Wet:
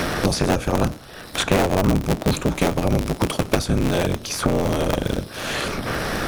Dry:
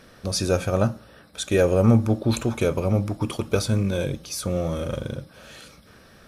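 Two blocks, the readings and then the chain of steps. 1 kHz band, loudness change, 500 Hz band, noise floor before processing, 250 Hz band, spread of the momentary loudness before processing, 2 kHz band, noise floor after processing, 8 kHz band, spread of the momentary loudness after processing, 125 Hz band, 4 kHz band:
+9.0 dB, +1.5 dB, +1.5 dB, -51 dBFS, +2.5 dB, 15 LU, +8.5 dB, -38 dBFS, +3.5 dB, 6 LU, +0.5 dB, +6.5 dB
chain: cycle switcher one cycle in 3, inverted; three bands compressed up and down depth 100%; trim +2 dB

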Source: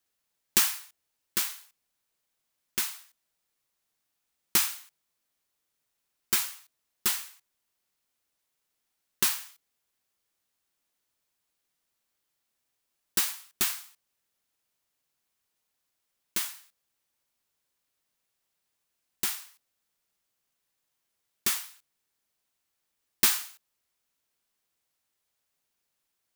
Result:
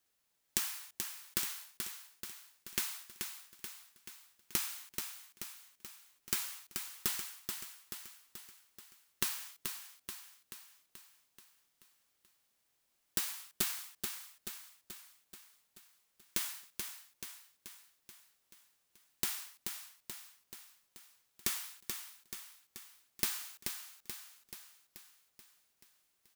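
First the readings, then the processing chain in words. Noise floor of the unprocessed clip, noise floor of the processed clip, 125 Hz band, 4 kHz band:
-81 dBFS, -78 dBFS, -2.5 dB, -7.5 dB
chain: compression 10:1, threshold -32 dBFS, peak gain reduction 15.5 dB; on a send: feedback delay 432 ms, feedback 56%, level -6 dB; on the sum: trim +1 dB

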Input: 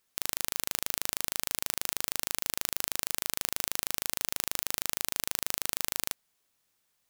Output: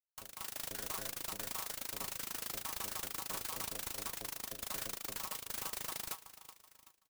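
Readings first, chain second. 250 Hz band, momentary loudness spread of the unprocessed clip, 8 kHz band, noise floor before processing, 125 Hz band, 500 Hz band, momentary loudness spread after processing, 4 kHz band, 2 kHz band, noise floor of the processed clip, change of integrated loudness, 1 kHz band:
-5.0 dB, 0 LU, -9.0 dB, -76 dBFS, -4.5 dB, -4.5 dB, 5 LU, -9.0 dB, -8.5 dB, -71 dBFS, -9.0 dB, -4.0 dB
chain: random holes in the spectrogram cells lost 83%; inharmonic resonator 96 Hz, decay 0.29 s, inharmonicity 0.008; on a send: feedback delay 378 ms, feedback 51%, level -16.5 dB; on the sum: vibrato 15 Hz 58 cents; level rider gain up to 10 dB; hard clipper -32 dBFS, distortion -11 dB; peaking EQ 1.1 kHz +10 dB 0.55 oct; expander -59 dBFS; integer overflow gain 32 dB; sampling jitter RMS 0.14 ms; trim +1.5 dB

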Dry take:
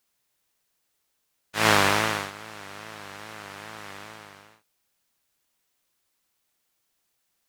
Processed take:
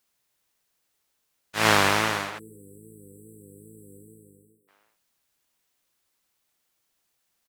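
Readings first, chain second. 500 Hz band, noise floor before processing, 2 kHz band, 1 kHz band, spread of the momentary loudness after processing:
0.0 dB, -75 dBFS, 0.0 dB, 0.0 dB, 16 LU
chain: speakerphone echo 360 ms, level -14 dB; spectral selection erased 2.39–4.68 s, 500–7600 Hz

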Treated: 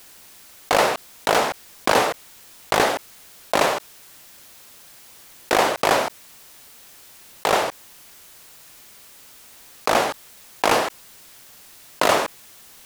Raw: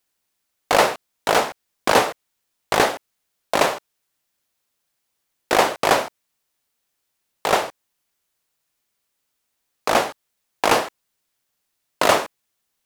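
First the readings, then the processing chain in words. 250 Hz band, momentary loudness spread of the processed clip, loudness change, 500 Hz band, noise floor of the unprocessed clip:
-0.5 dB, 10 LU, -1.0 dB, -0.5 dB, -76 dBFS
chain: level flattener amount 50%; trim -3.5 dB

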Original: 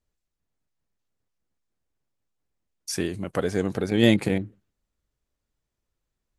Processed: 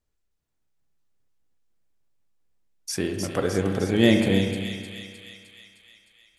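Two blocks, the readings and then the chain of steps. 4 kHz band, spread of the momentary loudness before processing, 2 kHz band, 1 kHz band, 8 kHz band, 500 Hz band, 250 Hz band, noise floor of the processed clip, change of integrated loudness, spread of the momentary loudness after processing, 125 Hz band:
+2.5 dB, 14 LU, +2.0 dB, +1.5 dB, +2.0 dB, +1.5 dB, +1.5 dB, -75 dBFS, +1.0 dB, 21 LU, +1.5 dB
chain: on a send: feedback echo behind a high-pass 307 ms, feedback 62%, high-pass 2.7 kHz, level -4 dB; on the sum: spring tank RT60 1.9 s, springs 31/56 ms, chirp 40 ms, DRR 4 dB

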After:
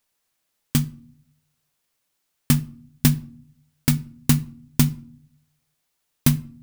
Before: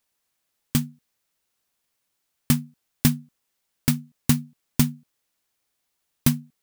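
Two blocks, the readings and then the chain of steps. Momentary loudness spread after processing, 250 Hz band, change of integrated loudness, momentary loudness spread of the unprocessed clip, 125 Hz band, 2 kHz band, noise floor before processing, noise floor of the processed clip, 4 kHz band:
8 LU, +1.0 dB, +2.0 dB, 4 LU, +4.0 dB, +1.5 dB, -77 dBFS, -75 dBFS, +1.5 dB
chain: simulated room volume 630 m³, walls furnished, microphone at 0.44 m; trim +1.5 dB

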